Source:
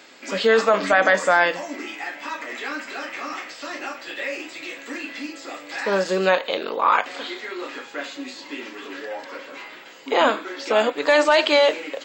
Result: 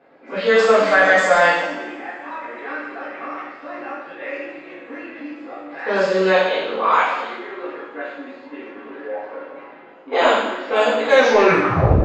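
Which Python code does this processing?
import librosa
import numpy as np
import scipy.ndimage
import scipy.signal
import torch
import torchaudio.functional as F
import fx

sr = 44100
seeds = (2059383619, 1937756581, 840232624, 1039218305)

y = fx.tape_stop_end(x, sr, length_s=0.99)
y = fx.env_lowpass(y, sr, base_hz=840.0, full_db=-13.5)
y = fx.rev_double_slope(y, sr, seeds[0], early_s=0.97, late_s=3.3, knee_db=-25, drr_db=-8.5)
y = F.gain(torch.from_numpy(y), -5.5).numpy()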